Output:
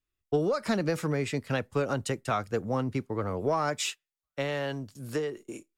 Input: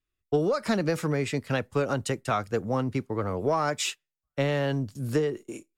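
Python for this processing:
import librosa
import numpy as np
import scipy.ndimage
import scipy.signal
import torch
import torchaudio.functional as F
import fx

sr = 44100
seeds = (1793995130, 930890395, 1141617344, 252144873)

y = fx.low_shelf(x, sr, hz=330.0, db=-8.5, at=(3.81, 5.37))
y = y * librosa.db_to_amplitude(-2.0)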